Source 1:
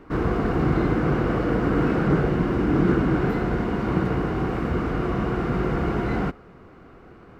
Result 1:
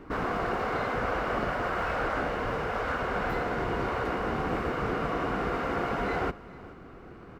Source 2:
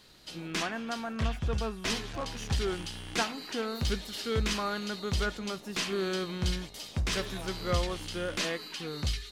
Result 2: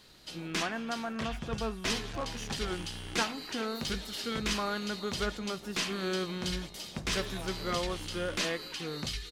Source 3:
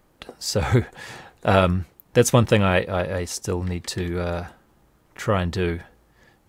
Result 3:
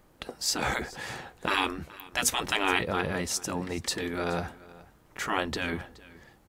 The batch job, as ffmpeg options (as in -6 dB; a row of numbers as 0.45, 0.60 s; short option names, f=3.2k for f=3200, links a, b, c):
-af "afftfilt=real='re*lt(hypot(re,im),0.282)':imag='im*lt(hypot(re,im),0.282)':win_size=1024:overlap=0.75,aecho=1:1:423:0.0944"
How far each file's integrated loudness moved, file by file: -7.0, -1.0, -7.0 LU